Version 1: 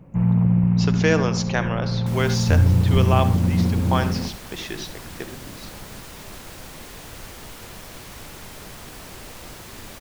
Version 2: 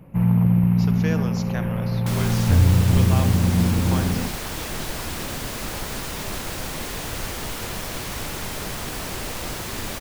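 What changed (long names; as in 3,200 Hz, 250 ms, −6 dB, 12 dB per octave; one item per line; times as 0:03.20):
speech −9.5 dB
first sound: remove head-to-tape spacing loss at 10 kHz 20 dB
second sound +9.0 dB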